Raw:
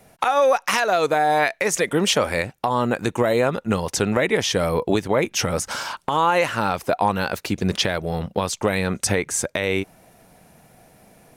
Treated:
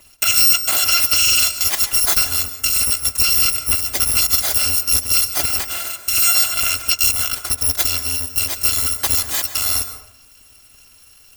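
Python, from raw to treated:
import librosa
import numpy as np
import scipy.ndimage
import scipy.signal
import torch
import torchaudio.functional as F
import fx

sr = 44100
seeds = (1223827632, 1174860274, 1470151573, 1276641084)

y = fx.bit_reversed(x, sr, seeds[0], block=256)
y = fx.rev_plate(y, sr, seeds[1], rt60_s=0.73, hf_ratio=0.45, predelay_ms=120, drr_db=10.0)
y = y * 10.0 ** (3.5 / 20.0)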